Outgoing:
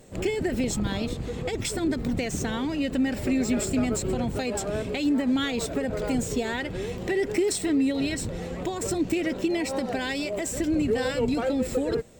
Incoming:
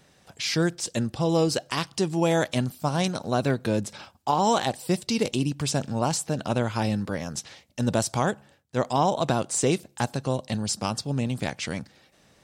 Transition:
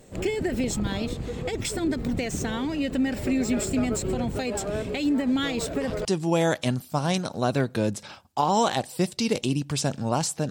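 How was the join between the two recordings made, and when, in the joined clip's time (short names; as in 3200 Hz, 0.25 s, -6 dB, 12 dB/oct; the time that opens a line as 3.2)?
outgoing
5.43 add incoming from 1.33 s 0.62 s -15 dB
6.05 switch to incoming from 1.95 s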